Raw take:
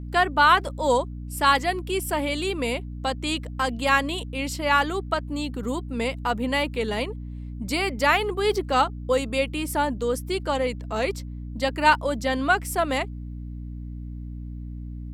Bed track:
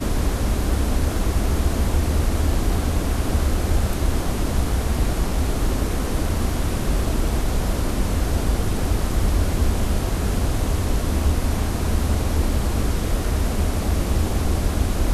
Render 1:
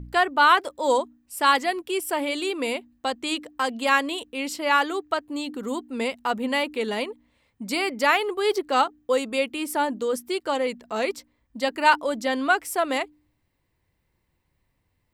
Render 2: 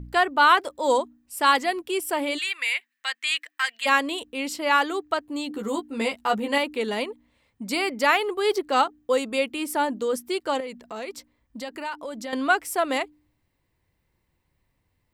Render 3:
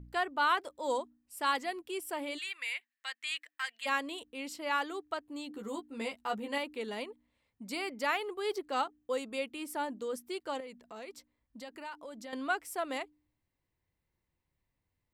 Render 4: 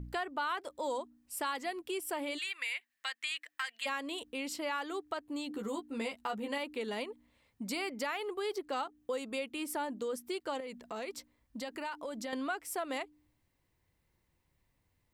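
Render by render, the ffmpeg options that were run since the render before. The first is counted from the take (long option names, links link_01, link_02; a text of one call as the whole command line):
ffmpeg -i in.wav -af "bandreject=frequency=60:width_type=h:width=4,bandreject=frequency=120:width_type=h:width=4,bandreject=frequency=180:width_type=h:width=4,bandreject=frequency=240:width_type=h:width=4,bandreject=frequency=300:width_type=h:width=4" out.wav
ffmpeg -i in.wav -filter_complex "[0:a]asplit=3[link_01][link_02][link_03];[link_01]afade=type=out:start_time=2.37:duration=0.02[link_04];[link_02]highpass=frequency=1900:width_type=q:width=3.6,afade=type=in:start_time=2.37:duration=0.02,afade=type=out:start_time=3.85:duration=0.02[link_05];[link_03]afade=type=in:start_time=3.85:duration=0.02[link_06];[link_04][link_05][link_06]amix=inputs=3:normalize=0,asettb=1/sr,asplit=3[link_07][link_08][link_09];[link_07]atrim=end=5.494[link_10];[link_08]atrim=start=5.49:end=6.58,asetpts=PTS-STARTPTS,afade=type=in:duration=0.004:curve=qsin,afade=type=out:start_time=1.086:duration=0.004:curve=qsin,asplit=2[link_11][link_12];[link_12]adelay=14,volume=-3.5dB[link_13];[link_11][link_13]amix=inputs=2:normalize=0,atrim=end_sample=48069[link_14];[link_09]atrim=start=6.576[link_15];[link_10][link_14]acrossfade=duration=0.004:curve1=hsin:curve2=qsin[link_16];[link_16][link_15]acrossfade=duration=0.004:curve1=qsin:curve2=hsin,asettb=1/sr,asplit=3[link_17][link_18][link_19];[link_17]atrim=end=10.604[link_20];[link_18]atrim=start=10.6:end=12.33,asetpts=PTS-STARTPTS,afade=type=in:duration=0.004:curve=qsin,afade=type=out:start_time=1.726:duration=0.004:curve=qsin,acompressor=threshold=-33dB:ratio=3:attack=3.2:release=140:knee=1:detection=peak[link_21];[link_19]atrim=start=12.326[link_22];[link_20][link_21]acrossfade=duration=0.004:curve1=hsin:curve2=qsin[link_23];[link_23][link_22]acrossfade=duration=0.004:curve1=qsin:curve2=hsin" out.wav
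ffmpeg -i in.wav -af "volume=-11.5dB" out.wav
ffmpeg -i in.wav -filter_complex "[0:a]asplit=2[link_01][link_02];[link_02]alimiter=level_in=3dB:limit=-24dB:level=0:latency=1,volume=-3dB,volume=2dB[link_03];[link_01][link_03]amix=inputs=2:normalize=0,acompressor=threshold=-37dB:ratio=2.5" out.wav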